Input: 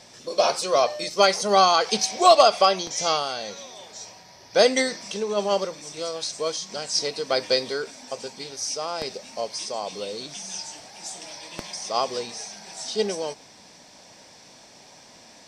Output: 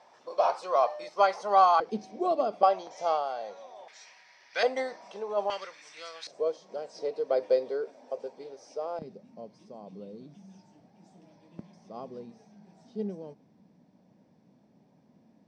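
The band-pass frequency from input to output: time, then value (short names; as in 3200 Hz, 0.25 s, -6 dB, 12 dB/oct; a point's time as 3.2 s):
band-pass, Q 2
900 Hz
from 1.8 s 270 Hz
from 2.63 s 720 Hz
from 3.88 s 2000 Hz
from 4.63 s 780 Hz
from 5.5 s 1900 Hz
from 6.27 s 510 Hz
from 8.99 s 190 Hz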